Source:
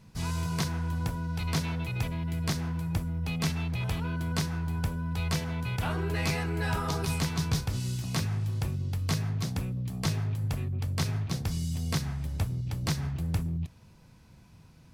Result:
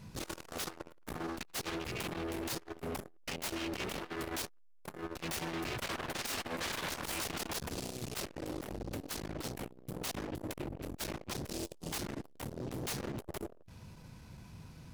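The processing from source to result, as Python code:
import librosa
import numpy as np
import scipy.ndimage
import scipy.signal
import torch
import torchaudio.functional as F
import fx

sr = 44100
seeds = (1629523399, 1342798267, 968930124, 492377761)

y = 10.0 ** (-35.5 / 20.0) * (np.abs((x / 10.0 ** (-35.5 / 20.0) + 3.0) % 4.0 - 2.0) - 1.0)
y = fx.transformer_sat(y, sr, knee_hz=210.0)
y = F.gain(torch.from_numpy(y), 4.5).numpy()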